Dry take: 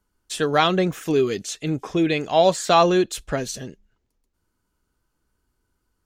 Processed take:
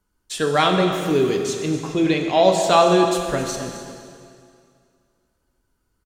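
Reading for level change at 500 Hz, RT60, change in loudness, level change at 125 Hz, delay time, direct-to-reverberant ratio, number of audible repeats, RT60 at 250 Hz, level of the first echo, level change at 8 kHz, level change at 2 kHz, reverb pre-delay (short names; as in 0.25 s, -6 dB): +2.5 dB, 2.3 s, +2.0 dB, +1.5 dB, 0.262 s, 2.5 dB, 1, 2.3 s, -14.5 dB, +2.0 dB, +1.5 dB, 7 ms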